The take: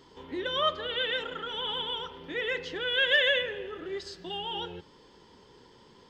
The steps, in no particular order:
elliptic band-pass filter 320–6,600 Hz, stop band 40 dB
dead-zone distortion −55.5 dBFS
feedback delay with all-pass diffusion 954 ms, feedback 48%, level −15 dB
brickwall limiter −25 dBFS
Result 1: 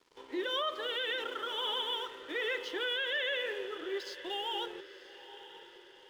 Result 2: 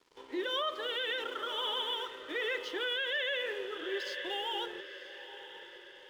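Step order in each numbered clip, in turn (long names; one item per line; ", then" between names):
elliptic band-pass filter, then dead-zone distortion, then brickwall limiter, then feedback delay with all-pass diffusion
elliptic band-pass filter, then dead-zone distortion, then feedback delay with all-pass diffusion, then brickwall limiter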